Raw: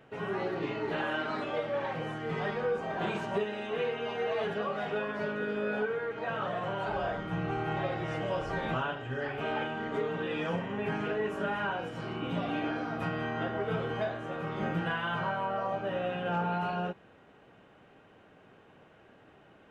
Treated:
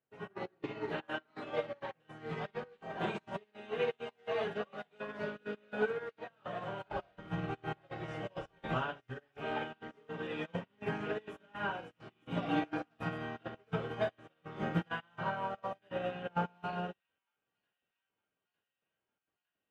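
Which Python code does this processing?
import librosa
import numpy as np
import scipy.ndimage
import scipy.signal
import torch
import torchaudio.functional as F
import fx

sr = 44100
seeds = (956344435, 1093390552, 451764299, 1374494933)

p1 = fx.comb(x, sr, ms=6.2, depth=0.63, at=(12.45, 12.85))
p2 = fx.step_gate(p1, sr, bpm=165, pattern='xxx.x..x', floor_db=-12.0, edge_ms=4.5)
p3 = p2 + fx.echo_wet_highpass(p2, sr, ms=907, feedback_pct=78, hz=2800.0, wet_db=-8.0, dry=0)
p4 = fx.upward_expand(p3, sr, threshold_db=-52.0, expansion=2.5)
y = F.gain(torch.from_numpy(p4), 2.0).numpy()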